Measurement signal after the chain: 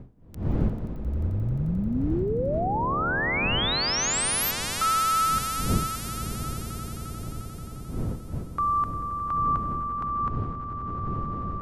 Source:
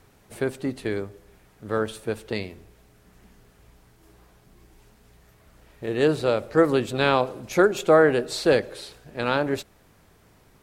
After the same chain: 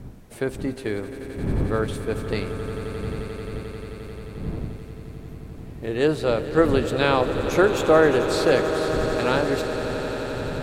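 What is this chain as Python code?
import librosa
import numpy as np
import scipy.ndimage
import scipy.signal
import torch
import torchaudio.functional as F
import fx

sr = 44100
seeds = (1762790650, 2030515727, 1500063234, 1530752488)

y = fx.dmg_wind(x, sr, seeds[0], corner_hz=170.0, level_db=-34.0)
y = fx.echo_swell(y, sr, ms=88, loudest=8, wet_db=-15.0)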